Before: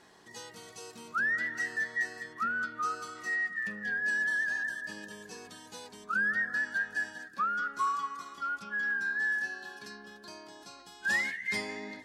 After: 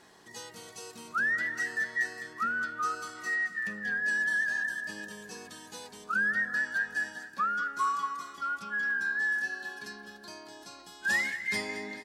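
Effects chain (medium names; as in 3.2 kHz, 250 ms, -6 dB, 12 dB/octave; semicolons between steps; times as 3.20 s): treble shelf 9.6 kHz +5.5 dB; on a send: feedback delay 217 ms, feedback 57%, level -15.5 dB; on the sum: trim +1 dB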